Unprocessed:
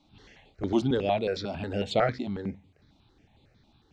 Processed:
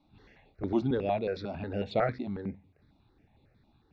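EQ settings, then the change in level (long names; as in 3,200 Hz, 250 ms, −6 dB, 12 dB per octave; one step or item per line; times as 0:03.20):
high-frequency loss of the air 210 metres
notch filter 3,100 Hz, Q 6
−2.5 dB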